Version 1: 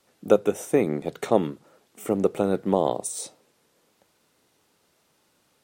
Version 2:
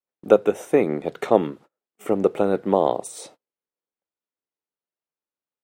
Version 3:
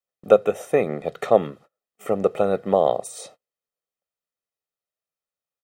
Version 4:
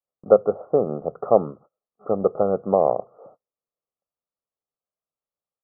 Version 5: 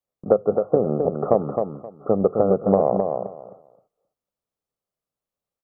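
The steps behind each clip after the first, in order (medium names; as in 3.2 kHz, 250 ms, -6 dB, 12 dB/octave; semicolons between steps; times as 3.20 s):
gate -45 dBFS, range -34 dB; tone controls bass -6 dB, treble -10 dB; vibrato 0.46 Hz 15 cents; trim +4 dB
comb 1.6 ms, depth 56%; trim -1 dB
steep low-pass 1.3 kHz 72 dB/octave
bass shelf 480 Hz +7.5 dB; compression 4:1, threshold -15 dBFS, peak gain reduction 10 dB; on a send: feedback delay 263 ms, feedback 19%, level -5.5 dB; on the sum: trim +1 dB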